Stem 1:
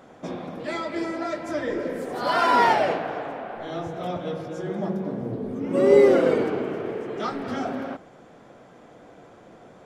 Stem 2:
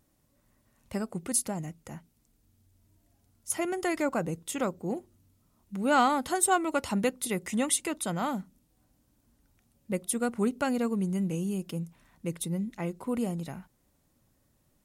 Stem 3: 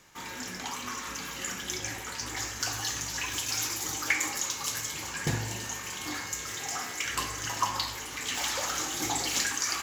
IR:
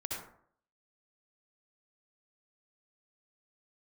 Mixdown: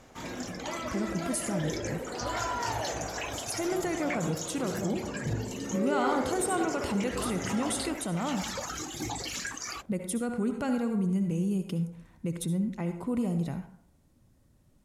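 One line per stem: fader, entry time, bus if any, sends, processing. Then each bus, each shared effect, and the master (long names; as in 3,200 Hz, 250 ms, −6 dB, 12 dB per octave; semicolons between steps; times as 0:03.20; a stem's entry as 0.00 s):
−11.0 dB, 0.00 s, no bus, send −4.5 dB, downward compressor, threshold −23 dBFS, peak gain reduction 12 dB
−2.5 dB, 0.00 s, bus A, send −8 dB, no processing
−2.5 dB, 0.00 s, bus A, no send, reverb reduction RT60 1.9 s
bus A: 0.0 dB, low-shelf EQ 360 Hz +10 dB; brickwall limiter −24.5 dBFS, peak gain reduction 13 dB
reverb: on, RT60 0.60 s, pre-delay 57 ms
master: Bessel low-pass filter 11,000 Hz, order 2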